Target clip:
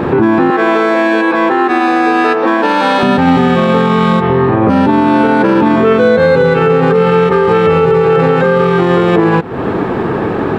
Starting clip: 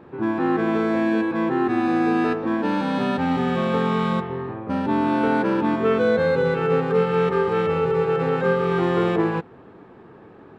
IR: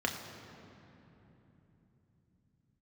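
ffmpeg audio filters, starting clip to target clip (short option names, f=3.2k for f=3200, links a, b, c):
-filter_complex "[0:a]acompressor=threshold=-35dB:ratio=6,asettb=1/sr,asplit=3[a][b][c];[a]atrim=end=0.504[d];[b]atrim=start=0.5:end=3.03,asetpts=PTS-STARTPTS,afade=t=in:d=0.004:c=qsin,afade=t=out:st=2.526:d=0.004:c=qsin,highpass=470[e];[c]atrim=start=3.026[f];[d][e]acrossfade=d=0.004:c1=hsin:c2=qsin[g];[g][f]acrossfade=d=0.004:c1=qsin:c2=hsin,alimiter=level_in=32dB:limit=-1dB:release=50:level=0:latency=1,volume=-1dB"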